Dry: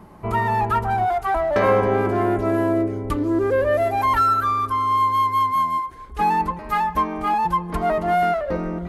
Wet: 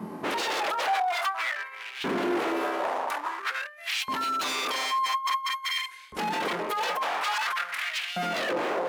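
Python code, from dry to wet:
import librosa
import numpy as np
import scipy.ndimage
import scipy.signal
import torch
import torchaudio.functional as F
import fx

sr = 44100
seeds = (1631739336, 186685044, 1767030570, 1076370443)

y = fx.room_flutter(x, sr, wall_m=4.0, rt60_s=0.3)
y = fx.over_compress(y, sr, threshold_db=-23.0, ratio=-0.5)
y = 10.0 ** (-25.0 / 20.0) * (np.abs((y / 10.0 ** (-25.0 / 20.0) + 3.0) % 4.0 - 2.0) - 1.0)
y = fx.filter_lfo_highpass(y, sr, shape='saw_up', hz=0.49, low_hz=200.0, high_hz=3100.0, q=2.0)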